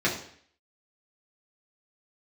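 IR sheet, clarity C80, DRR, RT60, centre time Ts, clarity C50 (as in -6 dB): 11.0 dB, -6.5 dB, 0.60 s, 27 ms, 7.5 dB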